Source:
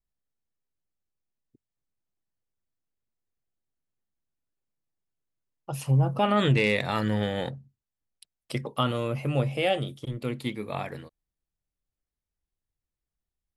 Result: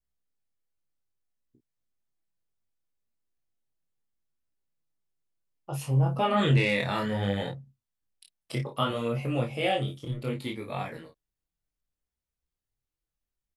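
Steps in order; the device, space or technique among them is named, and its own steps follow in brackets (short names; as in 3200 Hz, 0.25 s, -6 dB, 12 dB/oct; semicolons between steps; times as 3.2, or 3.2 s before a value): double-tracked vocal (doubler 30 ms -6 dB; chorus 0.65 Hz, delay 16.5 ms, depth 7.6 ms); gain +1 dB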